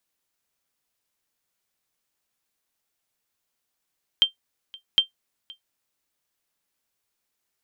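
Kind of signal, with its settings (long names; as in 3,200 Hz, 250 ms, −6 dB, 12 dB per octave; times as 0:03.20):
ping with an echo 3,150 Hz, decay 0.12 s, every 0.76 s, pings 2, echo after 0.52 s, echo −24.5 dB −8 dBFS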